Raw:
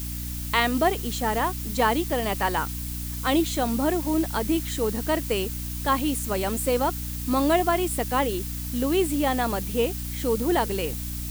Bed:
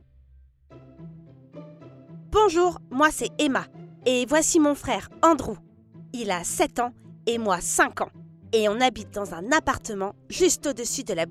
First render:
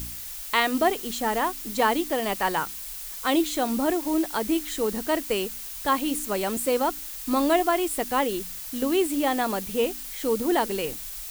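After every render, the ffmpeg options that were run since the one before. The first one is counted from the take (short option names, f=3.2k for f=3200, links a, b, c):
-af "bandreject=f=60:t=h:w=4,bandreject=f=120:t=h:w=4,bandreject=f=180:t=h:w=4,bandreject=f=240:t=h:w=4,bandreject=f=300:t=h:w=4"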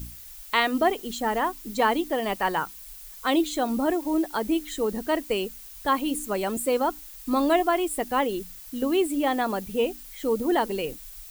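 -af "afftdn=nr=9:nf=-37"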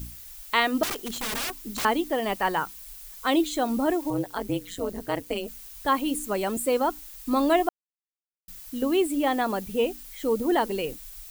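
-filter_complex "[0:a]asettb=1/sr,asplit=3[a][b][c];[a]atrim=end=0.834[d];[b]atrim=start=0.83:end=1.85,asetpts=PTS-STARTPTS,afade=t=in:d=0.004:c=qsin,afade=t=out:st=1.016:d=0.004:c=qsin,aeval=exprs='(mod(17.8*val(0)+1,2)-1)/17.8':c=same[e];[c]atrim=start=1.846[f];[d][e]acrossfade=d=0.004:c1=hsin:c2=qsin[g];[g][f]acrossfade=d=0.004:c1=qsin:c2=hsin,asettb=1/sr,asplit=3[h][i][j];[h]atrim=end=4.104[k];[i]atrim=start=4.1:end=5.48,asetpts=PTS-STARTPTS,afade=t=in:d=0.004:c=qsin,afade=t=out:st=1.376:d=0.004:c=qsin,tremolo=f=180:d=0.919[l];[j]atrim=start=5.476[m];[k][l]acrossfade=d=0.004:c1=hsin:c2=qsin[n];[n][m]acrossfade=d=0.004:c1=qsin:c2=hsin,asplit=3[o][p][q];[o]atrim=end=7.69,asetpts=PTS-STARTPTS,afade=t=out:st=7.686:d=0.004:c=hsin[r];[p]atrim=start=7.69:end=8.48,asetpts=PTS-STARTPTS,volume=0[s];[q]atrim=start=8.48,asetpts=PTS-STARTPTS,afade=t=in:d=0.004:c=hsin[t];[r][s][t]concat=n=3:v=0:a=1"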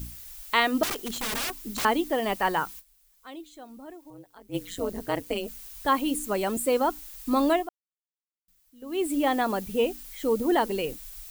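-filter_complex "[0:a]asplit=5[a][b][c][d][e];[a]atrim=end=2.95,asetpts=PTS-STARTPTS,afade=t=out:st=2.79:d=0.16:c=exp:silence=0.105925[f];[b]atrim=start=2.95:end=4.39,asetpts=PTS-STARTPTS,volume=-19.5dB[g];[c]atrim=start=4.39:end=7.84,asetpts=PTS-STARTPTS,afade=t=in:d=0.16:c=exp:silence=0.105925,afade=t=out:st=3.1:d=0.35:c=qua:silence=0.0794328[h];[d]atrim=start=7.84:end=8.74,asetpts=PTS-STARTPTS,volume=-22dB[i];[e]atrim=start=8.74,asetpts=PTS-STARTPTS,afade=t=in:d=0.35:c=qua:silence=0.0794328[j];[f][g][h][i][j]concat=n=5:v=0:a=1"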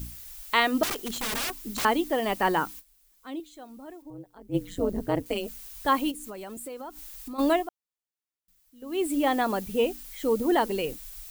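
-filter_complex "[0:a]asettb=1/sr,asplit=3[a][b][c];[a]atrim=end=2.364[d];[b]atrim=start=2.36:end=3.4,asetpts=PTS-STARTPTS,afade=t=in:d=0.004:c=qsin,afade=t=out:st=1.036:d=0.004:c=qsin,equalizer=f=270:w=1.5:g=9[e];[c]atrim=start=3.396[f];[d][e]acrossfade=d=0.004:c1=hsin:c2=qsin[g];[g][f]acrossfade=d=0.004:c1=qsin:c2=hsin,asettb=1/sr,asplit=3[h][i][j];[h]atrim=end=4.024[k];[i]atrim=start=4.02:end=5.26,asetpts=PTS-STARTPTS,afade=t=in:d=0.004:c=qsin,afade=t=out:st=1.236:d=0.004:c=qsin,tiltshelf=f=760:g=6.5[l];[j]atrim=start=5.256[m];[k][l]acrossfade=d=0.004:c1=hsin:c2=qsin[n];[n][m]acrossfade=d=0.004:c1=qsin:c2=hsin,asplit=3[o][p][q];[o]afade=t=out:st=6.1:d=0.02[r];[p]acompressor=threshold=-37dB:ratio=5:attack=3.2:release=140:knee=1:detection=peak,afade=t=in:st=6.1:d=0.02,afade=t=out:st=7.38:d=0.02[s];[q]afade=t=in:st=7.38:d=0.02[t];[r][s][t]amix=inputs=3:normalize=0"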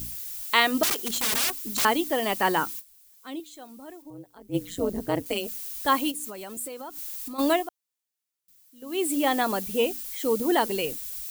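-af "highpass=f=77:p=1,highshelf=f=3k:g=8"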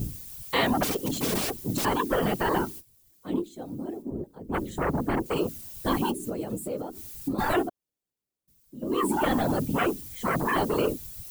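-filter_complex "[0:a]acrossover=split=540[a][b];[a]aeval=exprs='0.15*sin(PI/2*4.47*val(0)/0.15)':c=same[c];[c][b]amix=inputs=2:normalize=0,afftfilt=real='hypot(re,im)*cos(2*PI*random(0))':imag='hypot(re,im)*sin(2*PI*random(1))':win_size=512:overlap=0.75"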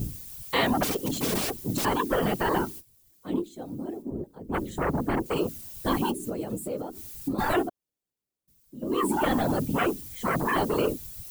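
-af anull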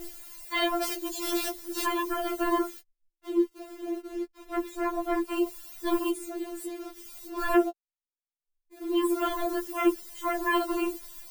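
-filter_complex "[0:a]acrossover=split=140[a][b];[b]aeval=exprs='val(0)*gte(abs(val(0)),0.00944)':c=same[c];[a][c]amix=inputs=2:normalize=0,afftfilt=real='re*4*eq(mod(b,16),0)':imag='im*4*eq(mod(b,16),0)':win_size=2048:overlap=0.75"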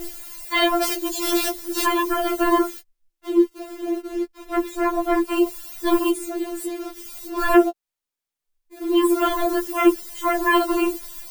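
-af "volume=8dB"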